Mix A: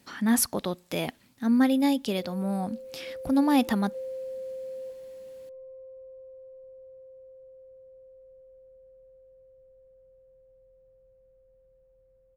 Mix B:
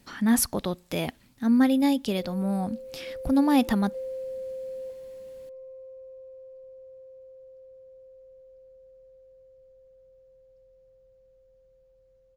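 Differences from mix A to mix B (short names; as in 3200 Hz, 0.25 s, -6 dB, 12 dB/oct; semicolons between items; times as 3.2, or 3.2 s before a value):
speech: remove HPF 160 Hz 6 dB/oct; background: remove air absorption 490 m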